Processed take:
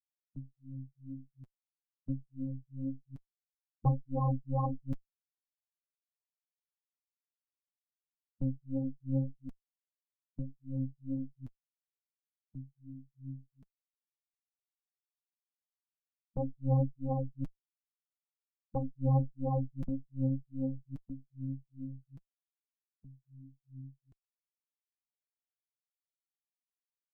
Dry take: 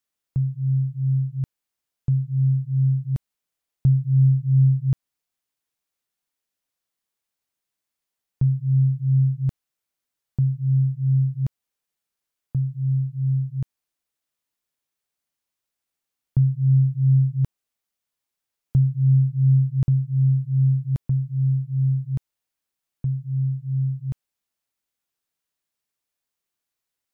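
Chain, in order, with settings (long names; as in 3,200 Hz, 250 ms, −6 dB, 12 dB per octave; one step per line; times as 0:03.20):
spectral dynamics exaggerated over time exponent 3
harmonic generator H 8 −9 dB, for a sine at −11 dBFS
flanger 1.7 Hz, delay 2.6 ms, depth 5.8 ms, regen +23%
level −8.5 dB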